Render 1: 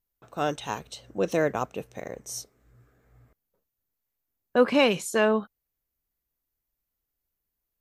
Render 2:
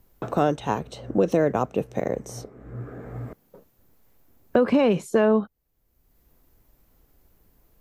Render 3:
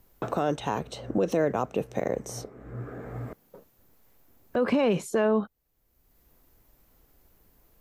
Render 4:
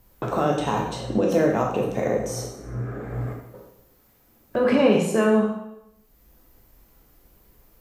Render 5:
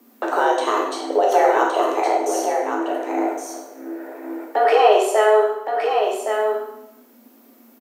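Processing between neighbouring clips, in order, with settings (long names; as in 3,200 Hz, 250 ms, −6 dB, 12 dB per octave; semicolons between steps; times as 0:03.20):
tilt shelving filter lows +7 dB, about 1,200 Hz; brickwall limiter −12 dBFS, peak gain reduction 7 dB; multiband upward and downward compressor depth 70%; level +2 dB
low-shelf EQ 370 Hz −4 dB; brickwall limiter −17 dBFS, peak gain reduction 11 dB; level +1.5 dB
convolution reverb RT60 0.80 s, pre-delay 6 ms, DRR −1 dB; level +2 dB
frequency shifter +210 Hz; single-tap delay 1,116 ms −6 dB; level +4 dB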